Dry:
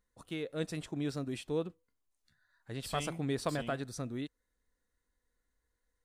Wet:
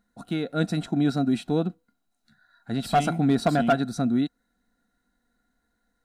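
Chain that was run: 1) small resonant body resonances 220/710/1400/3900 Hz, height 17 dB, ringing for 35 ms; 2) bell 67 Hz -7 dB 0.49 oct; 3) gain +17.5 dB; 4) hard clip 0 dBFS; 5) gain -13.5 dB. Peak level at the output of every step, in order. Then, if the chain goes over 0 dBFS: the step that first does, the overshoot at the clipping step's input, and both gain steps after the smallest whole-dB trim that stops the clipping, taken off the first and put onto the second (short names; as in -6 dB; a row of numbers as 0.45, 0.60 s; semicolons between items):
-11.5, -11.5, +6.0, 0.0, -13.5 dBFS; step 3, 6.0 dB; step 3 +11.5 dB, step 5 -7.5 dB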